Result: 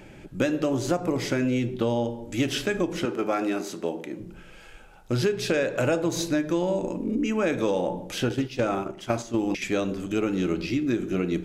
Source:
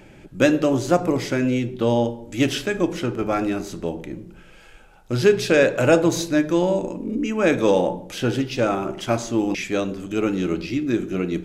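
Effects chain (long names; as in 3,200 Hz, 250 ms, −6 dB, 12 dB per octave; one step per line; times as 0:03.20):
0:03.05–0:04.20: high-pass filter 260 Hz 12 dB per octave
0:08.29–0:09.62: noise gate −24 dBFS, range −9 dB
downward compressor 6 to 1, threshold −21 dBFS, peak gain reduction 11 dB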